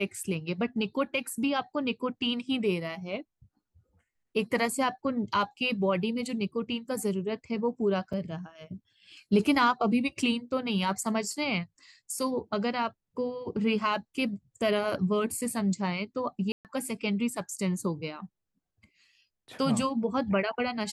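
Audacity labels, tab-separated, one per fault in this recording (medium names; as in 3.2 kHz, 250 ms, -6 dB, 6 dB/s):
8.130000	8.130000	dropout 4.8 ms
16.520000	16.650000	dropout 128 ms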